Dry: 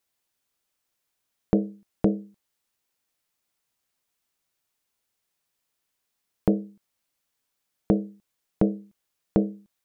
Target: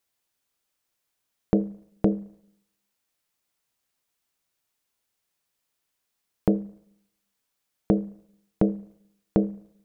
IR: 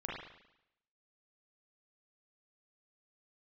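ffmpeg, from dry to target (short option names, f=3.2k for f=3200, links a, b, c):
-filter_complex "[0:a]asplit=2[a][b];[1:a]atrim=start_sample=2205,adelay=35[c];[b][c]afir=irnorm=-1:irlink=0,volume=-24dB[d];[a][d]amix=inputs=2:normalize=0"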